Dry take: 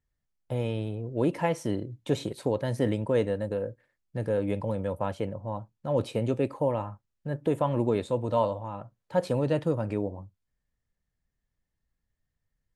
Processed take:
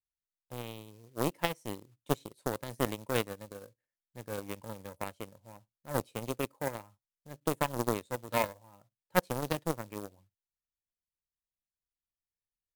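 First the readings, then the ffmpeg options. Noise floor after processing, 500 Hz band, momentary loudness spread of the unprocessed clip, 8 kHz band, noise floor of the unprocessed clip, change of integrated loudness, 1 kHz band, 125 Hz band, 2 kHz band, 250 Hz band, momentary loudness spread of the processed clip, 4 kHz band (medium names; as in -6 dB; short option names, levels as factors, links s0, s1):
under -85 dBFS, -8.5 dB, 10 LU, no reading, -83 dBFS, -6.0 dB, -3.0 dB, -10.0 dB, +2.5 dB, -8.5 dB, 17 LU, +1.0 dB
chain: -af "aeval=exprs='0.251*(cos(1*acos(clip(val(0)/0.251,-1,1)))-cos(1*PI/2))+0.0794*(cos(3*acos(clip(val(0)/0.251,-1,1)))-cos(3*PI/2))':c=same,acrusher=bits=4:mode=log:mix=0:aa=0.000001,aemphasis=mode=production:type=cd,volume=1.33"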